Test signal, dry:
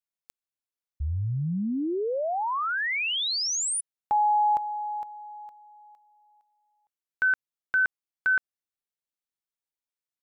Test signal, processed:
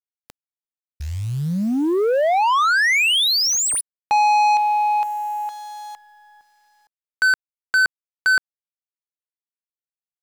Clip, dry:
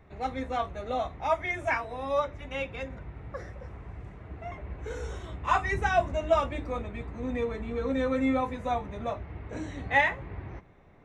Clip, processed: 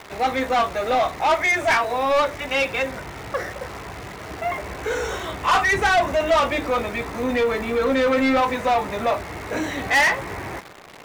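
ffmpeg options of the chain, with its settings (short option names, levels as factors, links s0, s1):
-filter_complex "[0:a]acontrast=54,acrusher=bits=9:dc=4:mix=0:aa=0.000001,asplit=2[s0][s1];[s1]highpass=f=720:p=1,volume=14.1,asoftclip=type=tanh:threshold=0.501[s2];[s0][s2]amix=inputs=2:normalize=0,lowpass=f=5700:p=1,volume=0.501,volume=0.596"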